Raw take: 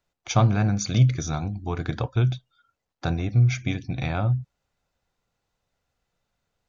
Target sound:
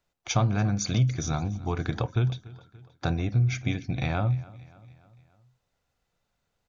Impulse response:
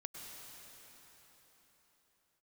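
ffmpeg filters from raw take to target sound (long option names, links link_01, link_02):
-filter_complex "[0:a]acompressor=threshold=-23dB:ratio=2,asplit=2[link_01][link_02];[link_02]aecho=0:1:288|576|864|1152:0.0891|0.0481|0.026|0.014[link_03];[link_01][link_03]amix=inputs=2:normalize=0"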